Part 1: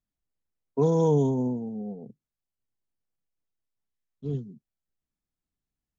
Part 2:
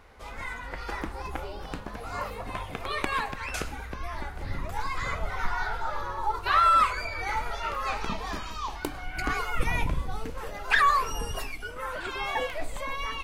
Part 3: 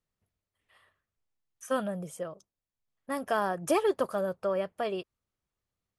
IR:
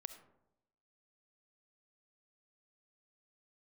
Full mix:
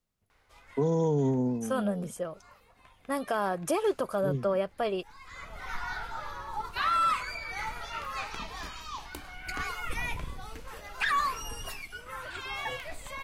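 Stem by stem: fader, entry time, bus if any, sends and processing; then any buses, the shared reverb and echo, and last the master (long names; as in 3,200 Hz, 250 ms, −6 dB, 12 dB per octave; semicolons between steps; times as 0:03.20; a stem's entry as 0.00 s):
−1.0 dB, 0.00 s, no send, no processing
−6.5 dB, 0.30 s, no send, sub-octave generator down 2 octaves, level +2 dB; tilt shelving filter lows −5 dB; automatic ducking −17 dB, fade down 1.05 s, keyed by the third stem
+2.0 dB, 0.00 s, no send, notch filter 1,800 Hz, Q 16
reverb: not used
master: brickwall limiter −19 dBFS, peak gain reduction 6.5 dB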